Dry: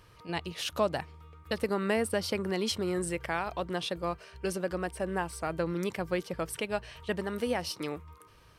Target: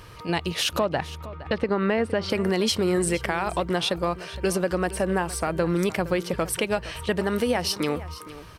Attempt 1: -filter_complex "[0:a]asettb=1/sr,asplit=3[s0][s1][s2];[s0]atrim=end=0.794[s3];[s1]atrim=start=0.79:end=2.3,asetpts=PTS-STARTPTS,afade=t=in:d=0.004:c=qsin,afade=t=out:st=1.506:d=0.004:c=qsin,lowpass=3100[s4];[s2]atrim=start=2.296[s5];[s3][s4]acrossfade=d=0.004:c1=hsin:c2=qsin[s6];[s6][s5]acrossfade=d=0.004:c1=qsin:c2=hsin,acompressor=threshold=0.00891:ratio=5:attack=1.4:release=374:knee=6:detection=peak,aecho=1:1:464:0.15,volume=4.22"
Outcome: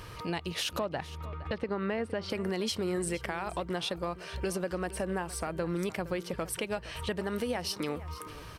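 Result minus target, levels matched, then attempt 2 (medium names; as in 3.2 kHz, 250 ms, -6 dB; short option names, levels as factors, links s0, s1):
compression: peak gain reduction +9 dB
-filter_complex "[0:a]asettb=1/sr,asplit=3[s0][s1][s2];[s0]atrim=end=0.794[s3];[s1]atrim=start=0.79:end=2.3,asetpts=PTS-STARTPTS,afade=t=in:d=0.004:c=qsin,afade=t=out:st=1.506:d=0.004:c=qsin,lowpass=3100[s4];[s2]atrim=start=2.296[s5];[s3][s4]acrossfade=d=0.004:c1=hsin:c2=qsin[s6];[s6][s5]acrossfade=d=0.004:c1=qsin:c2=hsin,acompressor=threshold=0.0335:ratio=5:attack=1.4:release=374:knee=6:detection=peak,aecho=1:1:464:0.15,volume=4.22"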